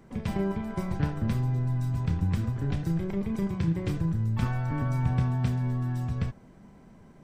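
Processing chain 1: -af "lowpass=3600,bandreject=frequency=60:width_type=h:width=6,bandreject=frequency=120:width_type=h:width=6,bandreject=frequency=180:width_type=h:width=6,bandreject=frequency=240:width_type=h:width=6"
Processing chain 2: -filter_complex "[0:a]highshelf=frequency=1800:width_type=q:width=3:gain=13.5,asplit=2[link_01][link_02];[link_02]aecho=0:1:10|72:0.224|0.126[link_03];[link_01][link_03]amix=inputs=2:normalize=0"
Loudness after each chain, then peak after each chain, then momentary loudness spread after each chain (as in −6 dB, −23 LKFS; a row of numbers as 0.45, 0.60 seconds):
−30.0, −27.5 LKFS; −14.0, −8.5 dBFS; 5, 4 LU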